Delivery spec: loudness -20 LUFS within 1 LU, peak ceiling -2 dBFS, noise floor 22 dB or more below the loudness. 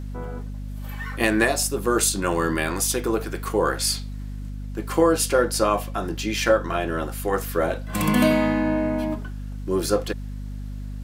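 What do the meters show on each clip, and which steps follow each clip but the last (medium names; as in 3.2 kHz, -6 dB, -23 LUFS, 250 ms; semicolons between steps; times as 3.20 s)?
tick rate 23 per s; hum 50 Hz; highest harmonic 250 Hz; hum level -30 dBFS; loudness -23.0 LUFS; peak level -4.0 dBFS; loudness target -20.0 LUFS
-> de-click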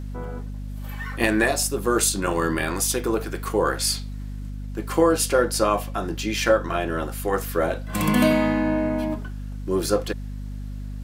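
tick rate 1.1 per s; hum 50 Hz; highest harmonic 250 Hz; hum level -30 dBFS
-> hum notches 50/100/150/200/250 Hz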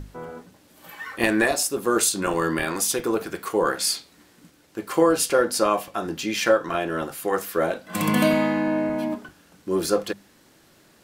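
hum not found; loudness -23.0 LUFS; peak level -3.5 dBFS; loudness target -20.0 LUFS
-> trim +3 dB; peak limiter -2 dBFS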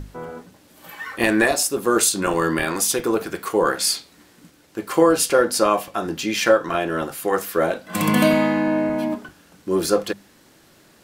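loudness -20.0 LUFS; peak level -2.0 dBFS; noise floor -53 dBFS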